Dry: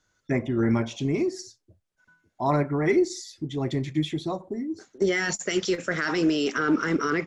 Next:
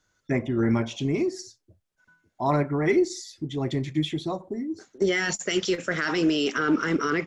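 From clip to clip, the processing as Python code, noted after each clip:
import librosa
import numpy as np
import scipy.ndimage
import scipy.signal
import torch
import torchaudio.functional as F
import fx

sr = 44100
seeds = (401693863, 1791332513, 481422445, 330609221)

y = fx.dynamic_eq(x, sr, hz=3000.0, q=3.1, threshold_db=-45.0, ratio=4.0, max_db=4)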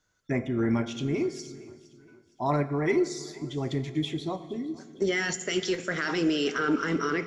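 y = fx.echo_feedback(x, sr, ms=463, feedback_pct=38, wet_db=-20)
y = fx.rev_fdn(y, sr, rt60_s=1.5, lf_ratio=1.55, hf_ratio=1.0, size_ms=13.0, drr_db=12.0)
y = y * librosa.db_to_amplitude(-3.0)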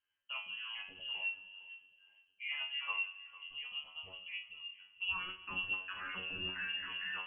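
y = fx.comb_fb(x, sr, f0_hz=94.0, decay_s=0.3, harmonics='all', damping=0.0, mix_pct=100)
y = y + 10.0 ** (-18.5 / 20.0) * np.pad(y, (int(453 * sr / 1000.0), 0))[:len(y)]
y = fx.freq_invert(y, sr, carrier_hz=3100)
y = y * librosa.db_to_amplitude(-4.0)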